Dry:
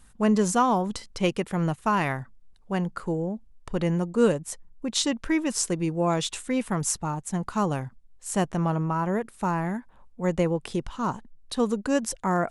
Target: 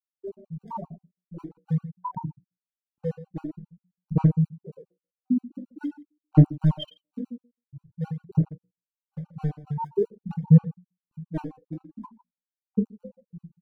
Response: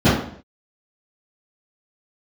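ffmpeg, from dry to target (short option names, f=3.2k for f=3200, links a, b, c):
-filter_complex "[0:a]alimiter=limit=-17.5dB:level=0:latency=1:release=311,equalizer=f=64:t=o:w=0.87:g=-9.5,asplit=2[a][b];[b]adelay=12,volume=-4dB[c];[a][c]amix=inputs=2:normalize=0,asetrate=40517,aresample=44100,acrossover=split=810[d][e];[d]aeval=exprs='val(0)*(1-1/2+1/2*cos(2*PI*3.6*n/s))':c=same[f];[e]aeval=exprs='val(0)*(1-1/2-1/2*cos(2*PI*3.6*n/s))':c=same[g];[f][g]amix=inputs=2:normalize=0,afftfilt=real='re*gte(hypot(re,im),0.282)':imag='im*gte(hypot(re,im),0.282)':win_size=1024:overlap=0.75,bandreject=f=60:t=h:w=6,bandreject=f=120:t=h:w=6,bandreject=f=180:t=h:w=6,bandreject=f=240:t=h:w=6,bandreject=f=300:t=h:w=6,bandreject=f=360:t=h:w=6,bandreject=f=420:t=h:w=6,bandreject=f=480:t=h:w=6,bandreject=f=540:t=h:w=6,bandreject=f=600:t=h:w=6,adynamicequalizer=threshold=0.00708:dfrequency=170:dqfactor=2.5:tfrequency=170:tqfactor=2.5:attack=5:release=100:ratio=0.375:range=3:mode=boostabove:tftype=bell,volume=22dB,asoftclip=hard,volume=-22dB,asplit=2[h][i];[i]aecho=0:1:20|45|76.25|115.3|164.1:0.631|0.398|0.251|0.158|0.1[j];[h][j]amix=inputs=2:normalize=0,aphaser=in_gain=1:out_gain=1:delay=4:decay=0.72:speed=0.47:type=sinusoidal,afftfilt=real='re*gt(sin(2*PI*7.5*pts/sr)*(1-2*mod(floor(b*sr/1024/770),2)),0)':imag='im*gt(sin(2*PI*7.5*pts/sr)*(1-2*mod(floor(b*sr/1024/770),2)),0)':win_size=1024:overlap=0.75"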